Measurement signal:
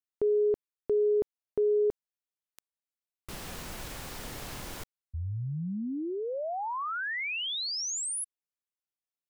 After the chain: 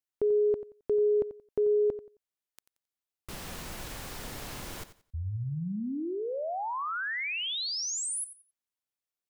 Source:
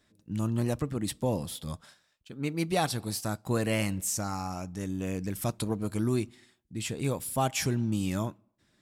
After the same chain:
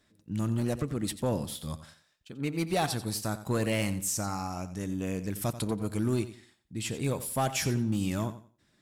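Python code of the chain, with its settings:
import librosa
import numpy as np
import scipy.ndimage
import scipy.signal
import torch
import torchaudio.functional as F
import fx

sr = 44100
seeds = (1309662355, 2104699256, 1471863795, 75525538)

p1 = np.clip(10.0 ** (21.5 / 20.0) * x, -1.0, 1.0) / 10.0 ** (21.5 / 20.0)
y = p1 + fx.echo_feedback(p1, sr, ms=89, feedback_pct=24, wet_db=-13.5, dry=0)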